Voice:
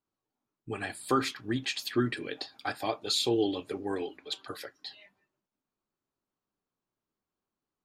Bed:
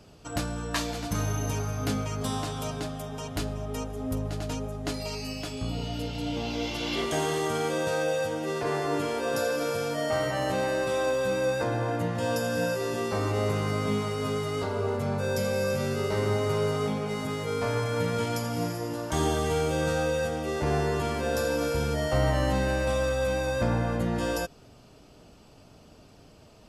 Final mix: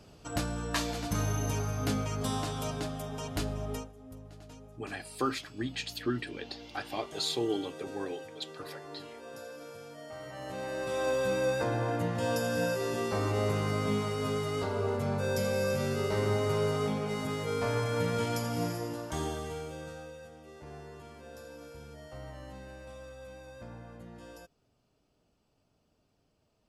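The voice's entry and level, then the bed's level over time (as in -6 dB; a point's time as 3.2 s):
4.10 s, -4.0 dB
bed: 3.74 s -2 dB
3.94 s -17.5 dB
10.15 s -17.5 dB
11.13 s -2.5 dB
18.76 s -2.5 dB
20.2 s -20.5 dB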